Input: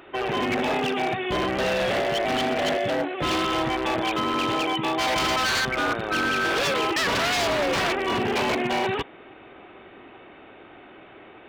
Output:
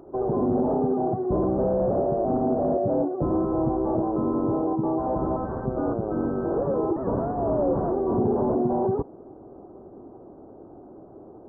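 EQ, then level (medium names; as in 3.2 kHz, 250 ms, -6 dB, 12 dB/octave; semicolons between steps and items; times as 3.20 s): Gaussian low-pass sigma 12 samples; +5.5 dB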